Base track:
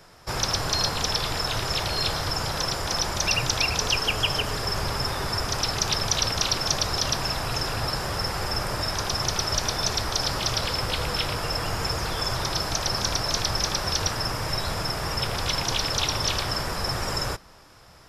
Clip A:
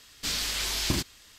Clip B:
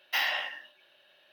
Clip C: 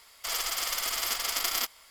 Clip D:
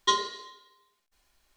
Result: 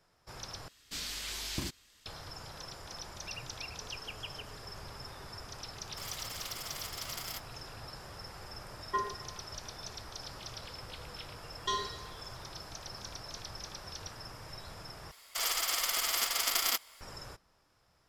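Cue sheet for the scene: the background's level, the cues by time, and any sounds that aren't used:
base track -19 dB
0.68 replace with A -9.5 dB
5.73 add C -13 dB
8.86 add D -6.5 dB + inverse Chebyshev low-pass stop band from 4900 Hz, stop band 50 dB
11.6 add D -5 dB + limiter -16.5 dBFS
15.11 replace with C -1 dB + low shelf 120 Hz -5 dB
not used: B

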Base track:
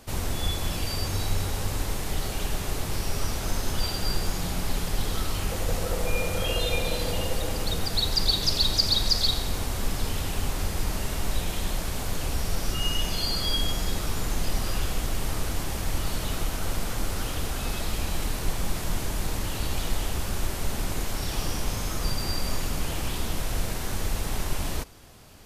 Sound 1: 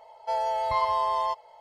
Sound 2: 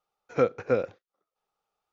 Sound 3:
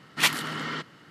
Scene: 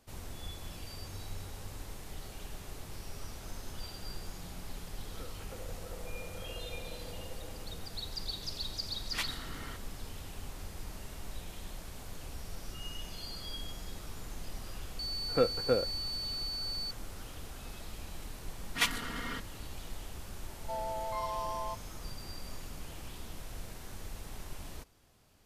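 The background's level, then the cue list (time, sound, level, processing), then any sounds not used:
base track -15.5 dB
4.82 add 2 -15 dB + compressor, threshold -32 dBFS
8.95 add 3 -14.5 dB
14.99 add 2 -4 dB + pulse-width modulation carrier 4500 Hz
18.58 add 3 -10.5 dB + comb 4.2 ms, depth 100%
20.41 add 1 -13.5 dB + bell 630 Hz +5.5 dB 0.78 oct

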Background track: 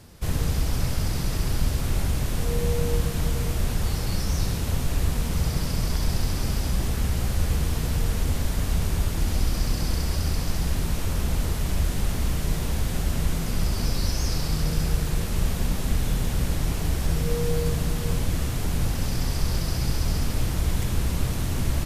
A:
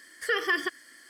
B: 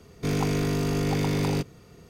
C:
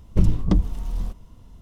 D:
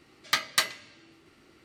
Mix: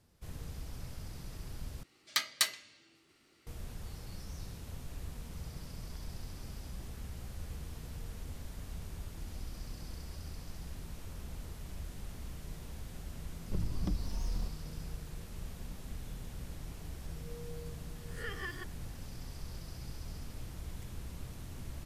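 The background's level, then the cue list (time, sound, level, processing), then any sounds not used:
background track -19.5 dB
1.83 replace with D -11 dB + high shelf 2900 Hz +10 dB
13.36 add C -5 dB + compressor, threshold -25 dBFS
17.95 add A -17.5 dB + spectral swells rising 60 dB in 0.37 s
not used: B

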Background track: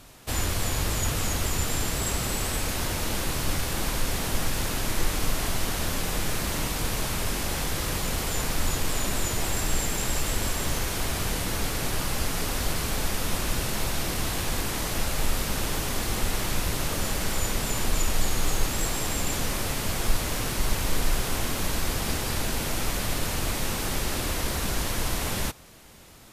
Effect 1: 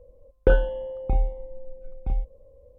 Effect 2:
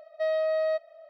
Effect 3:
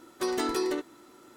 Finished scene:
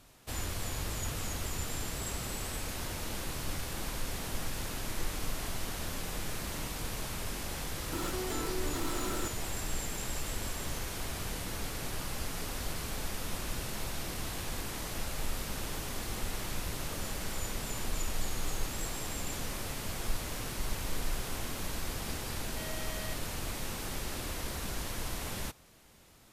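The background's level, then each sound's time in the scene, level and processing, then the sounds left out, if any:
background track -9.5 dB
7.92 add 3 -11.5 dB + fast leveller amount 100%
22.37 add 2 -15 dB + core saturation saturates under 2400 Hz
not used: 1

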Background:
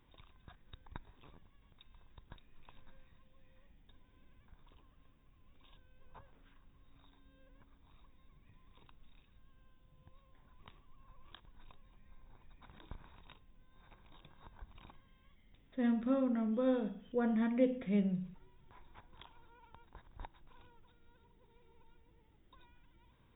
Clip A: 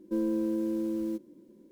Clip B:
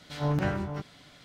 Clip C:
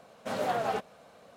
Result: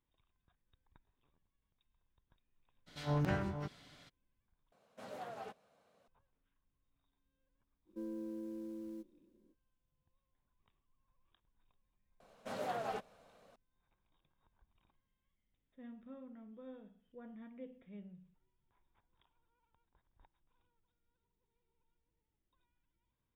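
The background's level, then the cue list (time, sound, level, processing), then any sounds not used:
background -19.5 dB
2.86 add B -6.5 dB, fades 0.02 s
4.72 replace with C -17 dB
7.85 add A -14.5 dB, fades 0.05 s
12.2 add C -9.5 dB

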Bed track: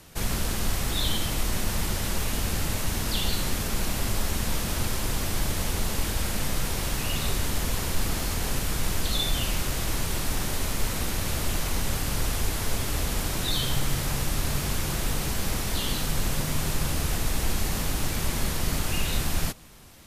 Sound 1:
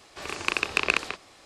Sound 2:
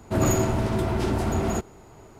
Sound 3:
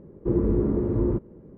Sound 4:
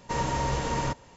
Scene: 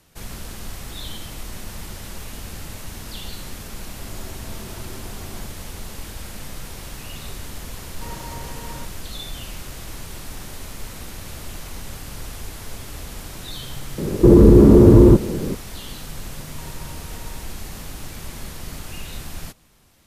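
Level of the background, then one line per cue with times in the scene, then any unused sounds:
bed track -7 dB
3.86 add 2 -16 dB + opening faded in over 0.62 s
7.92 add 4 -9 dB
13.98 add 3 -1 dB + maximiser +23 dB
16.49 add 4 -8 dB + compressor, threshold -33 dBFS
not used: 1

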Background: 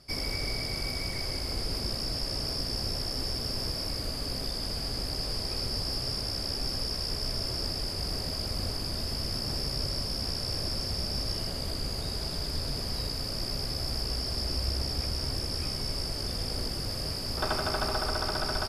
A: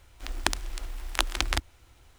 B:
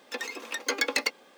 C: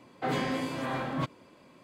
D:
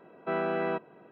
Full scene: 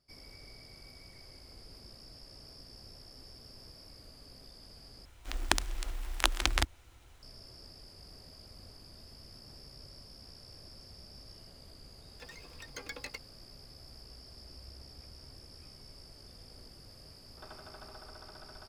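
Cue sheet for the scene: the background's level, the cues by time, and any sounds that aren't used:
background -20 dB
5.05 replace with A -1.5 dB
12.08 add B -16.5 dB
not used: C, D

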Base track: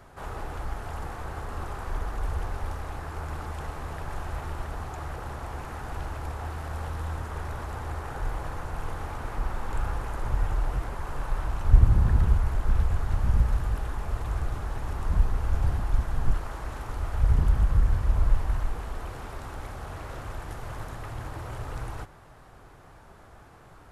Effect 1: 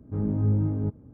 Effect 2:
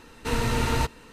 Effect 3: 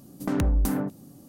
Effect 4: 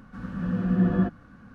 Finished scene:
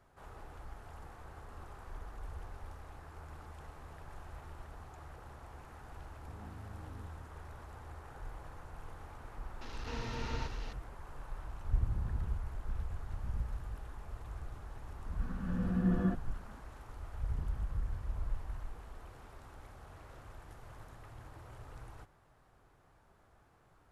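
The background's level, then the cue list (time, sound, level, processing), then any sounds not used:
base track -15 dB
6.18 add 1 -12.5 dB + compressor, threshold -37 dBFS
9.61 add 2 -15.5 dB + delta modulation 32 kbps, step -28.5 dBFS
15.06 add 4 -8.5 dB
not used: 3

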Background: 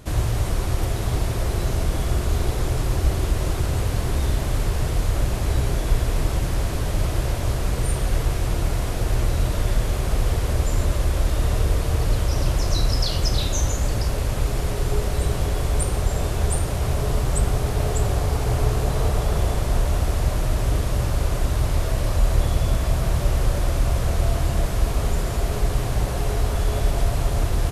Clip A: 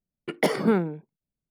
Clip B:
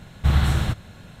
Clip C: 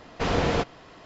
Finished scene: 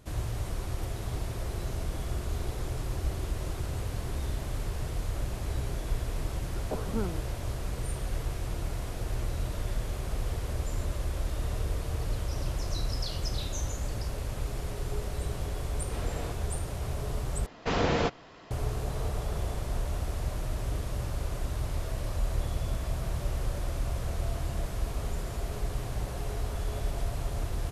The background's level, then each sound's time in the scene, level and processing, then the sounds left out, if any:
background -11 dB
6.28 add A -12 dB + steep low-pass 1500 Hz 96 dB/oct
15.7 add C -17 dB
17.46 replace with C -2.5 dB
not used: B

